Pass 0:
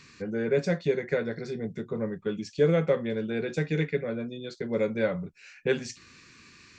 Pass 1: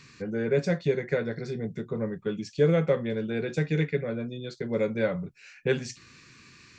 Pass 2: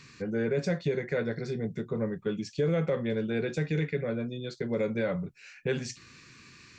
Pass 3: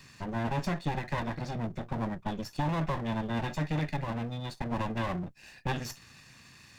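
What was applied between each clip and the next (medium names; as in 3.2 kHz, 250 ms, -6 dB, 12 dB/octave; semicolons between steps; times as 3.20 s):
peaking EQ 130 Hz +7.5 dB 0.33 oct
peak limiter -19.5 dBFS, peak gain reduction 7.5 dB
comb filter that takes the minimum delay 1.1 ms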